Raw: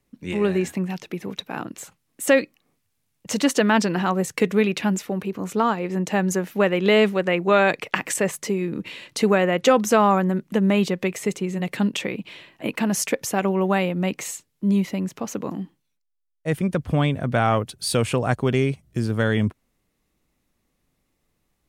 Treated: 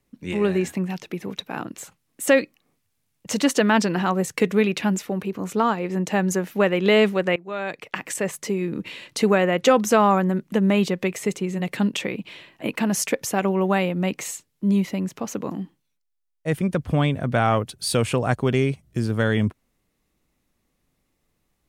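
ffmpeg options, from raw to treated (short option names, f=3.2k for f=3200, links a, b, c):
-filter_complex "[0:a]asplit=2[a][b];[a]atrim=end=7.36,asetpts=PTS-STARTPTS,afade=t=out:st=7.356:d=0.004:c=hsin:silence=0.0944061[c];[b]atrim=start=7.36,asetpts=PTS-STARTPTS,afade=t=in:d=1.3:silence=0.0944061[d];[c][d]concat=n=2:v=0:a=1"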